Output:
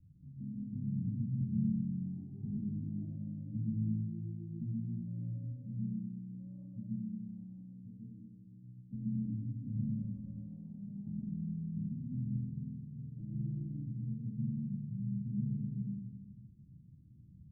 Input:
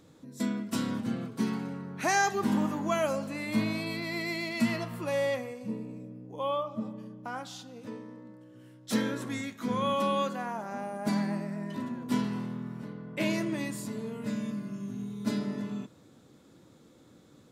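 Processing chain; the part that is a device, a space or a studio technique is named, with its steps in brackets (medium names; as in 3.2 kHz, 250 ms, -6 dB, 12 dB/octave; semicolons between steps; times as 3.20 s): club heard from the street (peak limiter -22 dBFS, peak gain reduction 6.5 dB; low-pass 130 Hz 24 dB/octave; reverberation RT60 1.4 s, pre-delay 107 ms, DRR -4 dB); trim +5.5 dB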